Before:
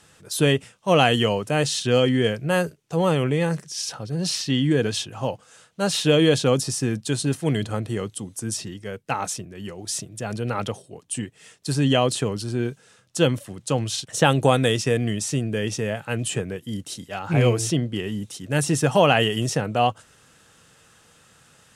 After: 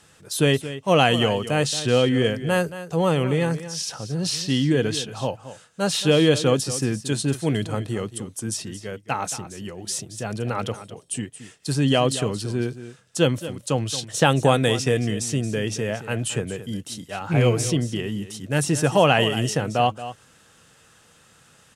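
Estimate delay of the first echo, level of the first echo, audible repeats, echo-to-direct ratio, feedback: 225 ms, -13.5 dB, 1, -13.5 dB, no regular repeats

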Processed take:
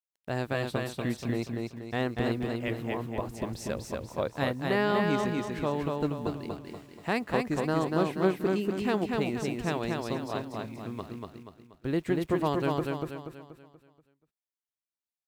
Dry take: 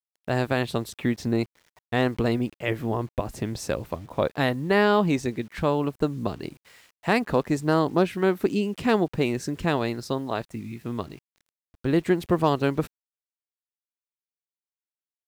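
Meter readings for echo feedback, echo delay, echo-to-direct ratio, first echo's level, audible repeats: 43%, 240 ms, -2.0 dB, -3.0 dB, 5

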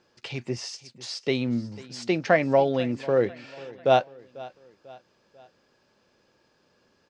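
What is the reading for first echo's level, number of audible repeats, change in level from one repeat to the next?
-20.0 dB, 3, -6.5 dB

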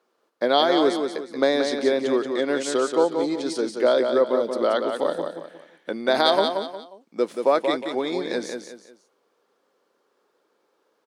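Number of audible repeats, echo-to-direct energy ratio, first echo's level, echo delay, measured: 3, -5.5 dB, -6.0 dB, 180 ms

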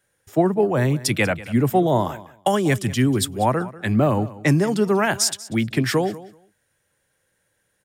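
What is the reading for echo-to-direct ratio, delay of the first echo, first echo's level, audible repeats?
-18.0 dB, 191 ms, -18.0 dB, 2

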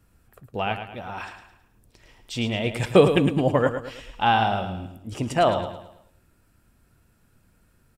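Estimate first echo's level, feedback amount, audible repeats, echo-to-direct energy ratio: -9.0 dB, 42%, 4, -8.0 dB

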